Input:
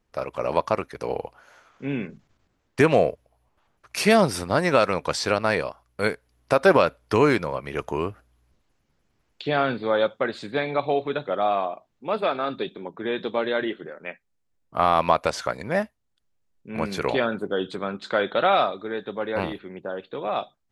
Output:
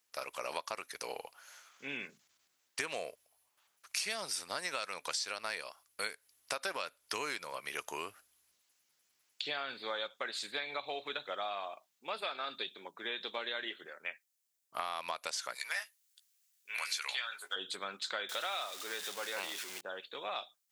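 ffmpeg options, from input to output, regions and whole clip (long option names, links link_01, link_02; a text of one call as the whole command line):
ffmpeg -i in.wav -filter_complex "[0:a]asettb=1/sr,asplit=3[link_01][link_02][link_03];[link_01]atrim=end=15.554[link_04];[link_02]atrim=start=15.55:end=17.56,asetpts=PTS-STARTPTS,afade=type=in:duration=0.004:curve=qsin,afade=type=out:start_time=2.006:duration=0.004:curve=qsin,highpass=1400,acontrast=81,asplit=2[link_05][link_06];[link_06]adelay=14,volume=-8dB[link_07];[link_05][link_07]amix=inputs=2:normalize=0,atrim=end_sample=88641[link_08];[link_03]atrim=start=17.556[link_09];[link_04][link_08]acrossfade=duration=0.004:curve1=hsin:curve2=qsin[link_10];[link_10][link_09]acrossfade=duration=0.004:curve1=qsin:curve2=hsin,asettb=1/sr,asplit=3[link_11][link_12][link_13];[link_11]atrim=end=18.294[link_14];[link_12]atrim=start=18.29:end=19.81,asetpts=PTS-STARTPTS,afade=type=in:duration=0.004:curve=qsin,afade=type=out:start_time=1.516:duration=0.004:curve=qsin,aeval=exprs='val(0)+0.5*0.02*sgn(val(0))':channel_layout=same,equalizer=frequency=79:width_type=o:width=2.3:gain=-11[link_15];[link_13]atrim=start=19.806[link_16];[link_14][link_15]acrossfade=duration=0.004:curve1=hsin:curve2=qsin[link_17];[link_17][link_16]acrossfade=duration=0.004:curve1=qsin:curve2=hsin,acrossover=split=8900[link_18][link_19];[link_19]acompressor=threshold=-56dB:ratio=4:attack=1:release=60[link_20];[link_18][link_20]amix=inputs=2:normalize=0,aderivative,acompressor=threshold=-43dB:ratio=6,volume=8.5dB" out.wav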